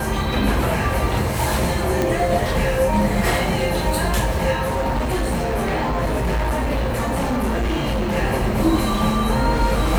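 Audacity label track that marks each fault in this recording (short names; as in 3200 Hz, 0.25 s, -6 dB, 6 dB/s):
2.020000	2.020000	pop
4.610000	8.170000	clipped -17.5 dBFS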